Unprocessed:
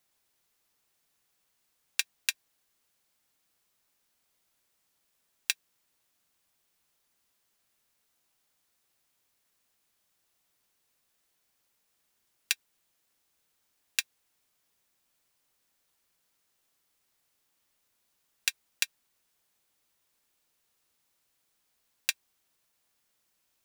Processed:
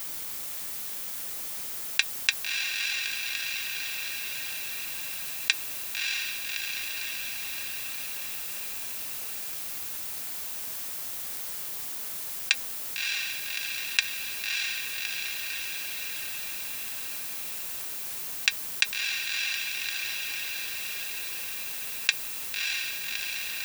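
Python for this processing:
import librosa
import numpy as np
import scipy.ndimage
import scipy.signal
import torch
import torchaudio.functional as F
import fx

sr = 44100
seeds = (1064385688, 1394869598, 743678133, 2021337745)

p1 = scipy.signal.sosfilt(scipy.signal.butter(2, 4600.0, 'lowpass', fs=sr, output='sos'), x)
p2 = fx.dmg_noise_colour(p1, sr, seeds[0], colour='violet', level_db=-60.0)
p3 = fx.quant_dither(p2, sr, seeds[1], bits=10, dither='none')
p4 = p3 + fx.echo_diffused(p3, sr, ms=612, feedback_pct=60, wet_db=-10.0, dry=0)
p5 = fx.env_flatten(p4, sr, amount_pct=50)
y = p5 * librosa.db_to_amplitude(7.5)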